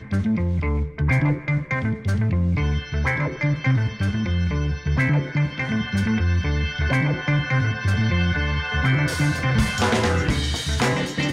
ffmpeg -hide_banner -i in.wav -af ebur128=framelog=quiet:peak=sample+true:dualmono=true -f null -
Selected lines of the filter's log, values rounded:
Integrated loudness:
  I:         -19.2 LUFS
  Threshold: -29.1 LUFS
Loudness range:
  LRA:         1.7 LU
  Threshold: -39.2 LUFS
  LRA low:   -19.9 LUFS
  LRA high:  -18.2 LUFS
Sample peak:
  Peak:       -9.4 dBFS
True peak:
  Peak:       -9.4 dBFS